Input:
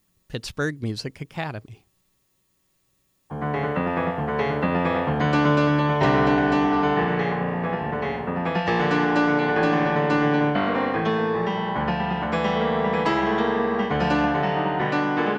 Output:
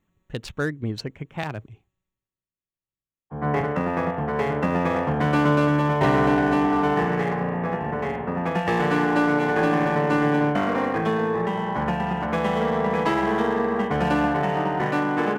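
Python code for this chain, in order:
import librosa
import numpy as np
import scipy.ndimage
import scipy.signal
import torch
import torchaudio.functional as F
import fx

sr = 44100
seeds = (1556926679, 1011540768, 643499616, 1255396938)

y = fx.wiener(x, sr, points=9)
y = fx.band_widen(y, sr, depth_pct=70, at=(1.43, 3.61))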